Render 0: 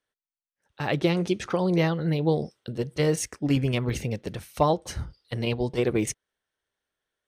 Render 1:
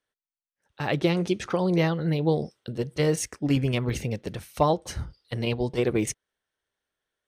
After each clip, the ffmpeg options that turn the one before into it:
-af anull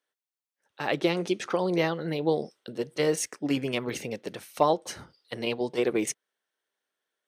-af "highpass=270"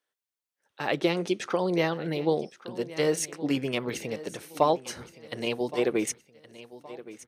-af "aecho=1:1:1119|2238|3357:0.141|0.0537|0.0204"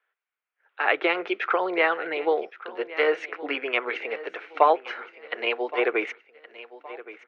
-af "highpass=f=460:w=0.5412,highpass=f=460:w=1.3066,equalizer=f=560:t=q:w=4:g=-7,equalizer=f=910:t=q:w=4:g=-3,equalizer=f=1.4k:t=q:w=4:g=6,equalizer=f=2.3k:t=q:w=4:g=4,lowpass=f=2.6k:w=0.5412,lowpass=f=2.6k:w=1.3066,volume=8dB"

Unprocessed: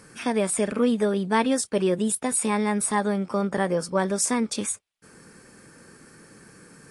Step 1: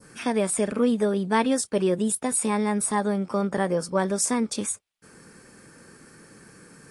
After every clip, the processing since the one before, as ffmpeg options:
-af "adynamicequalizer=threshold=0.01:dfrequency=2400:dqfactor=0.76:tfrequency=2400:tqfactor=0.76:attack=5:release=100:ratio=0.375:range=2:mode=cutabove:tftype=bell"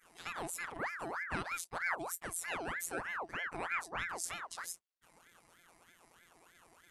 -af "afftfilt=real='hypot(re,im)*cos(PI*b)':imag='0':win_size=1024:overlap=0.75,aeval=exprs='val(0)*sin(2*PI*1200*n/s+1200*0.6/3.2*sin(2*PI*3.2*n/s))':c=same,volume=-8.5dB"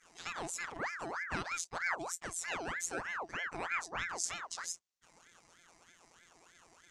-af "lowpass=f=6.5k:t=q:w=2.6"

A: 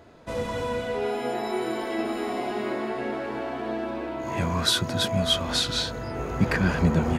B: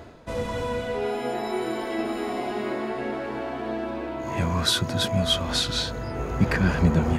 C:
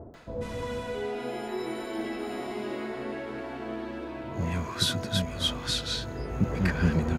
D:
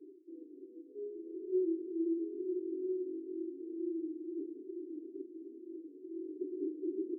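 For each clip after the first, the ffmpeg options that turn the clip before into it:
-af "areverse,acompressor=mode=upward:threshold=-31dB:ratio=2.5,areverse,lowshelf=f=84:g=6"
-filter_complex "[0:a]areverse,acompressor=mode=upward:threshold=-31dB:ratio=2.5,areverse,acrossover=split=860[a][b];[b]adelay=140[c];[a][c]amix=inputs=2:normalize=0,volume=-4.5dB"
-af "afftfilt=real='re*pow(10,12/40*sin(2*PI*(1.5*log(max(b,1)*sr/1024/100)/log(2)-(-2.2)*(pts-256)/sr)))':imag='im*pow(10,12/40*sin(2*PI*(1.5*log(max(b,1)*sr/1024/100)/log(2)-(-2.2)*(pts-256)/sr)))':win_size=1024:overlap=0.75,aeval=exprs='(mod(8.91*val(0)+1,2)-1)/8.91':c=same,asuperpass=centerf=340:order=8:qfactor=3.5"

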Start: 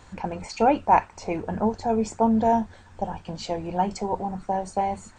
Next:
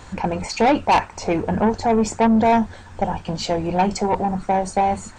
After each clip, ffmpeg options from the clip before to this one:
-af "asoftclip=type=tanh:threshold=-20.5dB,volume=9dB"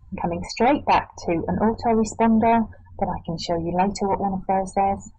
-af "afftdn=nr=33:nf=-32,volume=-2dB"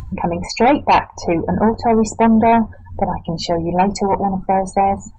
-af "acompressor=mode=upward:threshold=-26dB:ratio=2.5,volume=5.5dB"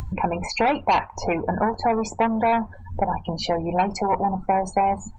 -filter_complex "[0:a]acrossover=split=700|4000[a][b][c];[a]acompressor=threshold=-26dB:ratio=4[d];[b]acompressor=threshold=-20dB:ratio=4[e];[c]acompressor=threshold=-40dB:ratio=4[f];[d][e][f]amix=inputs=3:normalize=0"

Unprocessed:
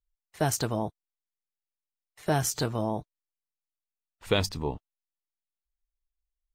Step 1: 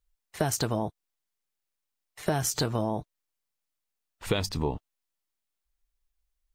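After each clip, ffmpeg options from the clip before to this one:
-af "acompressor=threshold=-31dB:ratio=6,volume=7dB"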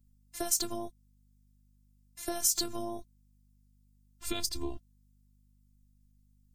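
-af "afftfilt=real='hypot(re,im)*cos(PI*b)':imag='0':win_size=512:overlap=0.75,bass=f=250:g=9,treble=f=4k:g=15,aeval=exprs='val(0)+0.00126*(sin(2*PI*50*n/s)+sin(2*PI*2*50*n/s)/2+sin(2*PI*3*50*n/s)/3+sin(2*PI*4*50*n/s)/4+sin(2*PI*5*50*n/s)/5)':c=same,volume=-6.5dB"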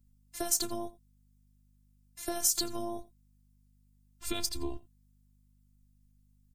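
-af "aecho=1:1:87:0.106"

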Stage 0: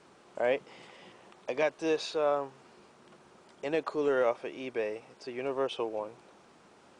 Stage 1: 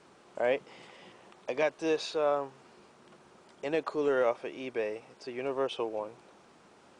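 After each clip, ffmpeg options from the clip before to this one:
-af anull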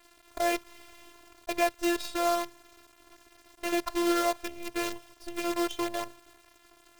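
-af "acrusher=bits=6:dc=4:mix=0:aa=0.000001,afftfilt=real='hypot(re,im)*cos(PI*b)':imag='0':win_size=512:overlap=0.75,volume=5.5dB"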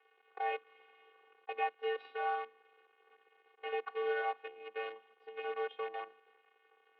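-af "highpass=f=170:t=q:w=0.5412,highpass=f=170:t=q:w=1.307,lowpass=f=2.8k:t=q:w=0.5176,lowpass=f=2.8k:t=q:w=0.7071,lowpass=f=2.8k:t=q:w=1.932,afreqshift=100,volume=-8dB"

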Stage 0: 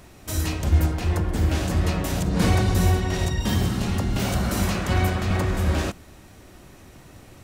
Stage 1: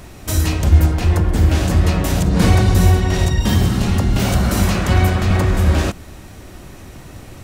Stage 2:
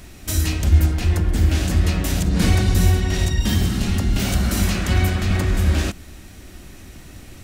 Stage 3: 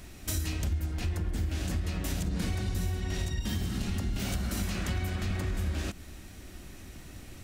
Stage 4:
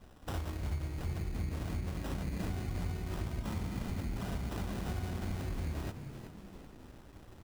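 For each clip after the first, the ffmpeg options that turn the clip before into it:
-filter_complex "[0:a]lowshelf=f=110:g=4.5,asplit=2[a][b];[b]acompressor=threshold=-26dB:ratio=6,volume=-2.5dB[c];[a][c]amix=inputs=2:normalize=0,volume=3.5dB"
-af "equalizer=f=125:t=o:w=1:g=-6,equalizer=f=500:t=o:w=1:g=-6,equalizer=f=1k:t=o:w=1:g=-7,volume=-1dB"
-af "acompressor=threshold=-22dB:ratio=6,volume=-6dB"
-filter_complex "[0:a]acrusher=samples=20:mix=1:aa=0.000001,asplit=6[a][b][c][d][e][f];[b]adelay=375,afreqshift=59,volume=-10dB[g];[c]adelay=750,afreqshift=118,volume=-16.4dB[h];[d]adelay=1125,afreqshift=177,volume=-22.8dB[i];[e]adelay=1500,afreqshift=236,volume=-29.1dB[j];[f]adelay=1875,afreqshift=295,volume=-35.5dB[k];[a][g][h][i][j][k]amix=inputs=6:normalize=0,aeval=exprs='sgn(val(0))*max(abs(val(0))-0.00224,0)':c=same,volume=-5.5dB"

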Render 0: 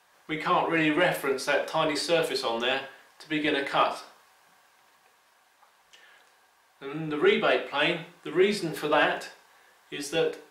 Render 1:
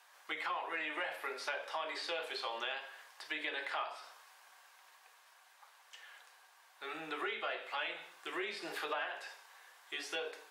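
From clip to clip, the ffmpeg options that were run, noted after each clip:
-filter_complex "[0:a]acrossover=split=4100[a][b];[b]acompressor=threshold=-51dB:ratio=4:attack=1:release=60[c];[a][c]amix=inputs=2:normalize=0,highpass=750,acompressor=threshold=-37dB:ratio=5"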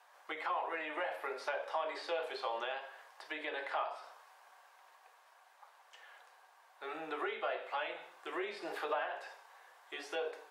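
-af "equalizer=f=630:t=o:w=2.5:g=12,volume=-7dB"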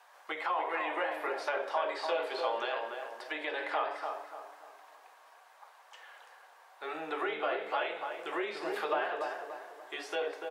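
-filter_complex "[0:a]asplit=2[a][b];[b]adelay=291,lowpass=f=1.4k:p=1,volume=-4dB,asplit=2[c][d];[d]adelay=291,lowpass=f=1.4k:p=1,volume=0.44,asplit=2[e][f];[f]adelay=291,lowpass=f=1.4k:p=1,volume=0.44,asplit=2[g][h];[h]adelay=291,lowpass=f=1.4k:p=1,volume=0.44,asplit=2[i][j];[j]adelay=291,lowpass=f=1.4k:p=1,volume=0.44,asplit=2[k][l];[l]adelay=291,lowpass=f=1.4k:p=1,volume=0.44[m];[a][c][e][g][i][k][m]amix=inputs=7:normalize=0,volume=4dB"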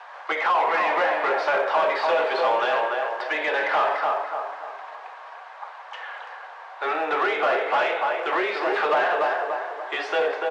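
-filter_complex "[0:a]asplit=2[a][b];[b]highpass=f=720:p=1,volume=20dB,asoftclip=type=tanh:threshold=-18.5dB[c];[a][c]amix=inputs=2:normalize=0,lowpass=f=1.4k:p=1,volume=-6dB,acrusher=bits=8:mode=log:mix=0:aa=0.000001,highpass=360,lowpass=4.9k,volume=7dB"

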